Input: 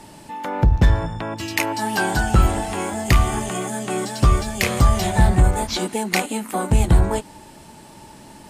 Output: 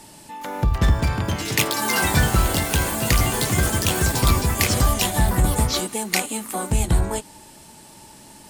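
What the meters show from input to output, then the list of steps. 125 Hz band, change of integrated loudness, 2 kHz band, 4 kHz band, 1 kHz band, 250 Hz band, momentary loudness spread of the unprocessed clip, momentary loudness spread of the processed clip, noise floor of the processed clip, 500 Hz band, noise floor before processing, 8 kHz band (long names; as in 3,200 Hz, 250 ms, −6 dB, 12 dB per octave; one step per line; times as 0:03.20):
−1.5 dB, −0.5 dB, +0.5 dB, +4.0 dB, −2.0 dB, −2.0 dB, 9 LU, 7 LU, −46 dBFS, −2.0 dB, −44 dBFS, +5.5 dB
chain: delay with pitch and tempo change per echo 413 ms, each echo +5 semitones, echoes 3
high-shelf EQ 3,700 Hz +10 dB
level −4.5 dB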